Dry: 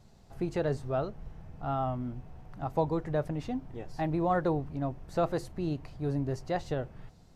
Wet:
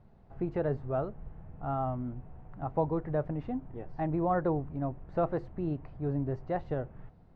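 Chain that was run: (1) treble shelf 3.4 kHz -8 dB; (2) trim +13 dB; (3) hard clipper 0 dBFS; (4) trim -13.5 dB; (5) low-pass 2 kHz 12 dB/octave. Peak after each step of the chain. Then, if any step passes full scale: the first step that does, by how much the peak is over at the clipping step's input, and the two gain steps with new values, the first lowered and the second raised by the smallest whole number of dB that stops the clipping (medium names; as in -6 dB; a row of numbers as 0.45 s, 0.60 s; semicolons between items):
-16.5 dBFS, -3.5 dBFS, -3.5 dBFS, -17.0 dBFS, -17.0 dBFS; nothing clips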